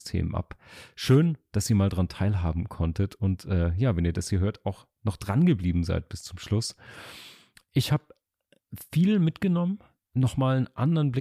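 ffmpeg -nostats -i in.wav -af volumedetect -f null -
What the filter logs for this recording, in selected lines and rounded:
mean_volume: -26.3 dB
max_volume: -8.5 dB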